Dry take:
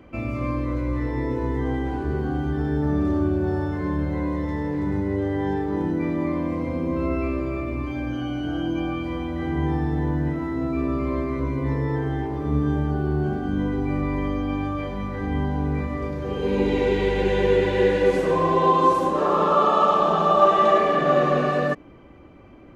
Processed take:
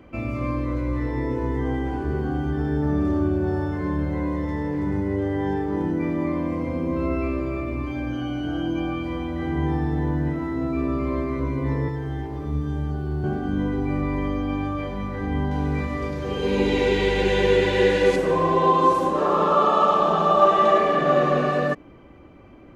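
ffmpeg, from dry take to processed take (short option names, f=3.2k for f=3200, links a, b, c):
-filter_complex "[0:a]asettb=1/sr,asplit=3[a][b][c];[a]atrim=end=1.194[d];[b]atrim=start=1.19:end=6.93,asetpts=PTS-STARTPTS,afade=t=in:d=0.004:c=qsin,afade=t=out:st=5.736:d=0.004:c=qsin,bandreject=f=3.9k:w=12[e];[c]atrim=start=6.926[f];[d][e]acrossfade=d=0.004:c1=hsin:c2=qsin[g];[g][f]acrossfade=d=0.004:c1=qsin:c2=hsin,asettb=1/sr,asplit=3[h][i][j];[h]atrim=end=11.884[k];[i]atrim=start=11.88:end=13.24,asetpts=PTS-STARTPTS,afade=t=in:d=0.004:c=qsin,afade=t=out:st=1.356:d=0.004:c=qsin,acrossover=split=130|3000[l][m][n];[m]acompressor=threshold=-32dB:ratio=2.5:attack=3.2:release=140:knee=2.83:detection=peak[o];[l][o][n]amix=inputs=3:normalize=0[p];[j]atrim=start=13.236[q];[k][p]acrossfade=d=0.004:c1=hsin:c2=qsin[r];[r][q]acrossfade=d=0.004:c1=qsin:c2=hsin,asettb=1/sr,asplit=3[s][t][u];[s]atrim=end=15.514[v];[t]atrim=start=15.51:end=18.16,asetpts=PTS-STARTPTS,afade=t=in:d=0.004:c=qsin,afade=t=out:st=2.646:d=0.004:c=qsin,equalizer=f=5.7k:w=0.35:g=7.5[w];[u]atrim=start=18.156[x];[v][w]acrossfade=d=0.004:c1=hsin:c2=qsin[y];[y][x]acrossfade=d=0.004:c1=qsin:c2=hsin"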